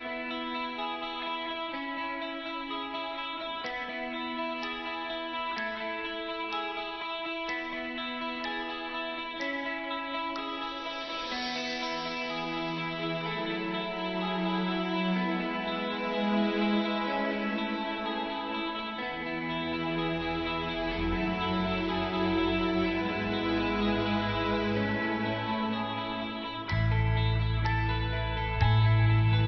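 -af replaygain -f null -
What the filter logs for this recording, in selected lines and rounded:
track_gain = +12.7 dB
track_peak = 0.167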